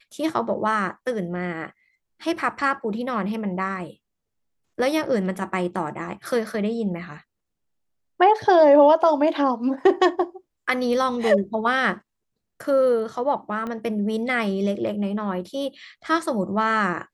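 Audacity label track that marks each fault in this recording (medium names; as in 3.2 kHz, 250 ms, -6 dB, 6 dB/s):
13.670000	13.670000	pop -20 dBFS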